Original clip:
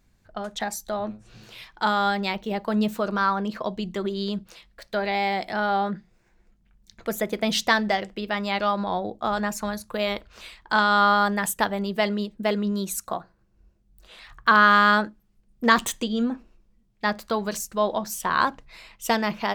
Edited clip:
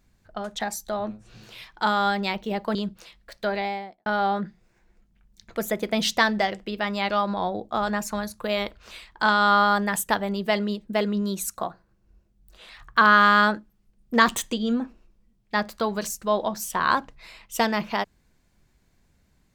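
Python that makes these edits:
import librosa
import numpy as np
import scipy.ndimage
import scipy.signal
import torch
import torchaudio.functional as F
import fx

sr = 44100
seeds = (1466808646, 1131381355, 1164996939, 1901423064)

y = fx.studio_fade_out(x, sr, start_s=4.97, length_s=0.59)
y = fx.edit(y, sr, fx.cut(start_s=2.75, length_s=1.5), tone=tone)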